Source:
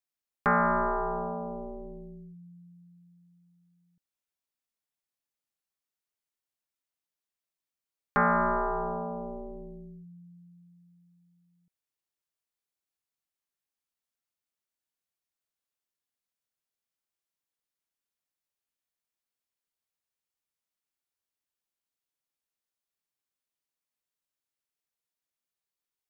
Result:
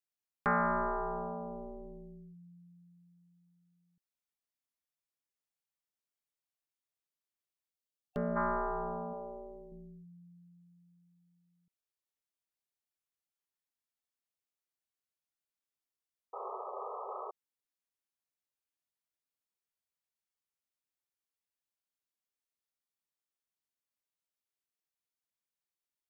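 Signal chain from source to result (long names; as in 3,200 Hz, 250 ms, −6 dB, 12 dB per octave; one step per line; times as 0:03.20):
0:07.70–0:08.36: gain on a spectral selection 740–2,700 Hz −18 dB
0:09.13–0:09.72: low shelf with overshoot 340 Hz −6.5 dB, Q 1.5
0:16.33–0:17.31: sound drawn into the spectrogram noise 370–1,300 Hz −36 dBFS
level −5.5 dB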